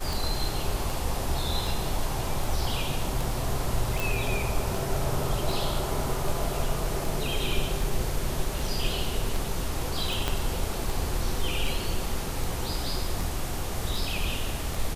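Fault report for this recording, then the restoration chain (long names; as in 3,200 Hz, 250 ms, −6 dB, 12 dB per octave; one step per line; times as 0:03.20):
scratch tick 78 rpm
0:04.00: click
0:10.28: click −11 dBFS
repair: click removal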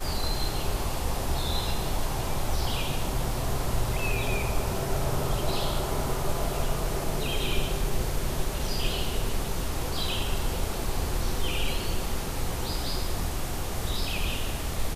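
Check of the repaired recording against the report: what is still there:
0:10.28: click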